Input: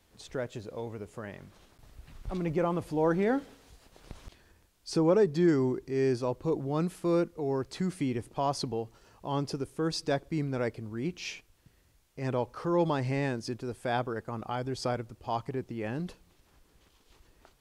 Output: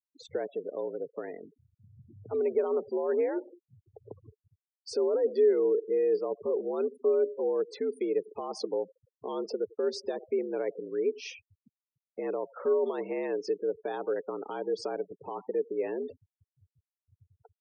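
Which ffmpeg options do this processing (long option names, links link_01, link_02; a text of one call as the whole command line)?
ffmpeg -i in.wav -filter_complex "[0:a]asplit=2[link_01][link_02];[link_02]acompressor=threshold=-42dB:ratio=10,volume=2.5dB[link_03];[link_01][link_03]amix=inputs=2:normalize=0,anlmdn=0.00398,aecho=1:1:94|188|282:0.0708|0.0297|0.0125,acrossover=split=210[link_04][link_05];[link_04]acompressor=threshold=-41dB:ratio=3[link_06];[link_06][link_05]amix=inputs=2:normalize=0,afreqshift=73,equalizer=frequency=170:width_type=o:width=0.8:gain=-7,alimiter=limit=-23dB:level=0:latency=1:release=10,afftfilt=real='re*gte(hypot(re,im),0.0158)':imag='im*gte(hypot(re,im),0.0158)':win_size=1024:overlap=0.75,equalizer=frequency=430:width_type=o:width=0.5:gain=15,volume=-6.5dB" out.wav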